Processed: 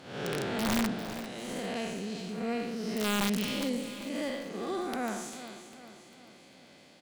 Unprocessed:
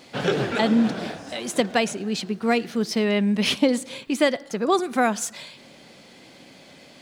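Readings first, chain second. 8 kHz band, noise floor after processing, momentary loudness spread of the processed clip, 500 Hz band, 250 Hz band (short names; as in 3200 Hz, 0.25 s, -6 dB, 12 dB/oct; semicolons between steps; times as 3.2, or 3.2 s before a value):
-8.0 dB, -56 dBFS, 17 LU, -11.5 dB, -10.0 dB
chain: time blur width 0.225 s; added harmonics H 2 -13 dB, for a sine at -12.5 dBFS; wrapped overs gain 15 dB; on a send: feedback echo 0.398 s, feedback 49%, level -12.5 dB; on the sum: gain -7 dB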